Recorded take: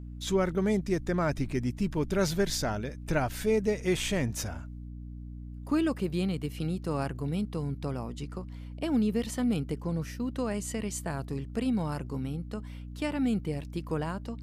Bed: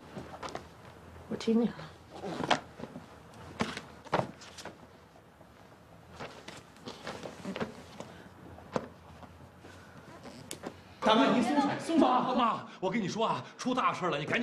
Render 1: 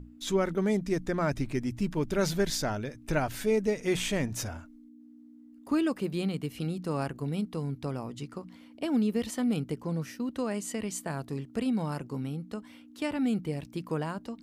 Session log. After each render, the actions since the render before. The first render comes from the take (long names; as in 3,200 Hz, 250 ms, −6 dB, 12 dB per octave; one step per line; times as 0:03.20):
mains-hum notches 60/120/180 Hz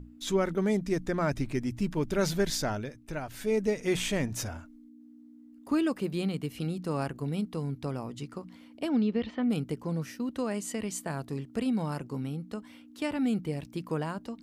0:02.76–0:03.62: duck −8 dB, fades 0.34 s
0:08.88–0:09.49: low-pass filter 5,800 Hz → 2,700 Hz 24 dB per octave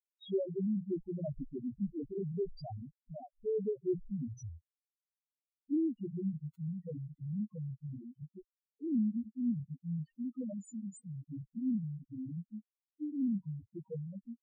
bit reduction 6 bits
spectral peaks only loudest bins 1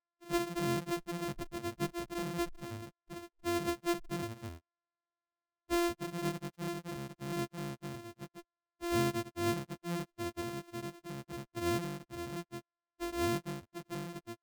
samples sorted by size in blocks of 128 samples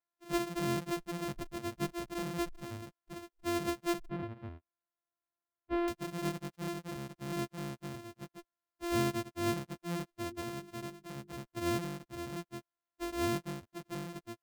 0:04.09–0:05.88: high-frequency loss of the air 450 metres
0:10.25–0:11.38: mains-hum notches 50/100/150/200/250/300/350/400 Hz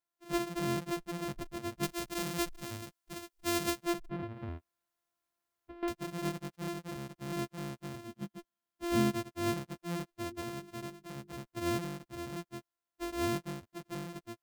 0:01.83–0:03.83: high-shelf EQ 2,500 Hz +9 dB
0:04.34–0:05.83: compressor whose output falls as the input rises −44 dBFS
0:08.06–0:09.11: hollow resonant body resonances 210/3,200 Hz, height 13 dB → 9 dB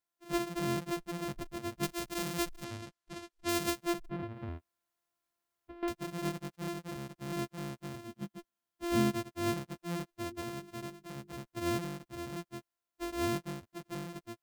0:02.64–0:03.49: high-frequency loss of the air 51 metres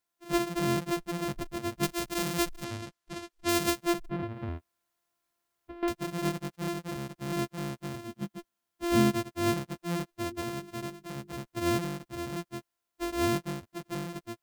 level +5 dB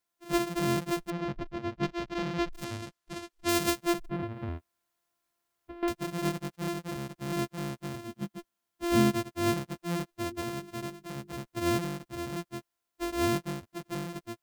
0:01.10–0:02.53: high-frequency loss of the air 210 metres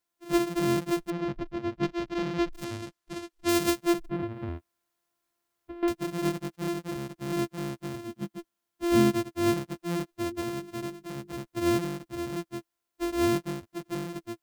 parametric band 330 Hz +5.5 dB 0.22 octaves